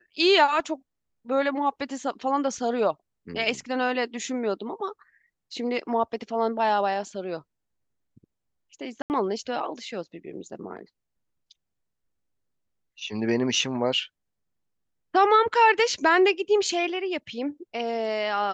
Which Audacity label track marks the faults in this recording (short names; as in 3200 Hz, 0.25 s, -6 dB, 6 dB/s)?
9.020000	9.100000	gap 79 ms